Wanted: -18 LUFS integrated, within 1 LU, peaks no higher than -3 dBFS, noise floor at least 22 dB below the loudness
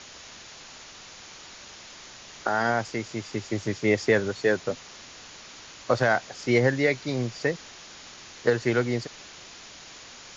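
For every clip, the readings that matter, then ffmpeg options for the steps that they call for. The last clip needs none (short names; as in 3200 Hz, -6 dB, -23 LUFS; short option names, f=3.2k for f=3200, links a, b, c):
noise floor -46 dBFS; noise floor target -48 dBFS; loudness -26.0 LUFS; peak -8.5 dBFS; loudness target -18.0 LUFS
-> -af "afftdn=nr=6:nf=-46"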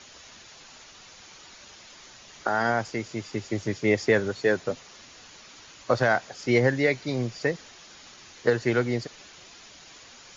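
noise floor -50 dBFS; loudness -26.0 LUFS; peak -8.5 dBFS; loudness target -18.0 LUFS
-> -af "volume=8dB,alimiter=limit=-3dB:level=0:latency=1"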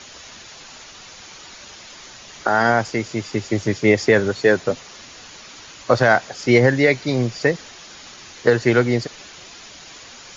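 loudness -18.5 LUFS; peak -3.0 dBFS; noise floor -42 dBFS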